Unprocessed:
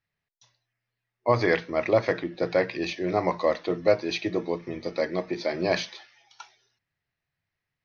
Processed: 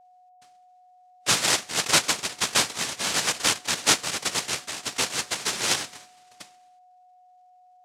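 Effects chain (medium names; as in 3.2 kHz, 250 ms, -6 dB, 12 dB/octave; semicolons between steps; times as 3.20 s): noise-vocoded speech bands 1; whistle 730 Hz -53 dBFS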